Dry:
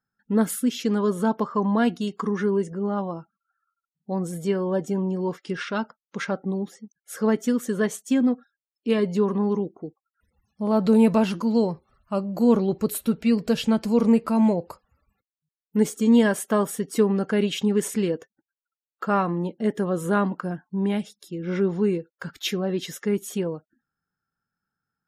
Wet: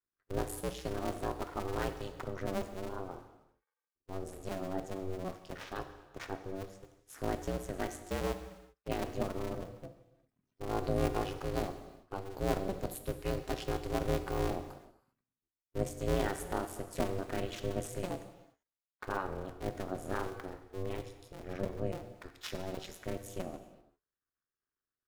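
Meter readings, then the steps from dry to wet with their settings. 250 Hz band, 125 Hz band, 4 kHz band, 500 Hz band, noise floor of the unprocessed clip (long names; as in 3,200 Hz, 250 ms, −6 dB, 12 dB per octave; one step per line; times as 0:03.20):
−19.0 dB, −9.5 dB, −11.5 dB, −12.5 dB, below −85 dBFS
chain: sub-harmonics by changed cycles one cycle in 2, muted
reverb whose tail is shaped and stops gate 420 ms falling, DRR 7.5 dB
ring modulation 190 Hz
level −8.5 dB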